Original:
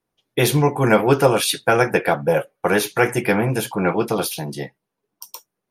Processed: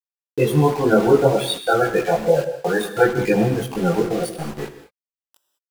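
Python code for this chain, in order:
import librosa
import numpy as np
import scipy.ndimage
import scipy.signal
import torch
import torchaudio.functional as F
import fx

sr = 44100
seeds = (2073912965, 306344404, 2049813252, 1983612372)

y = fx.dynamic_eq(x, sr, hz=130.0, q=3.6, threshold_db=-31.0, ratio=4.0, max_db=-3)
y = fx.spec_topn(y, sr, count=16)
y = np.where(np.abs(y) >= 10.0 ** (-28.5 / 20.0), y, 0.0)
y = fx.chorus_voices(y, sr, voices=4, hz=1.2, base_ms=21, depth_ms=3.0, mix_pct=50)
y = fx.rev_gated(y, sr, seeds[0], gate_ms=230, shape='flat', drr_db=9.0)
y = y * 10.0 ** (4.0 / 20.0)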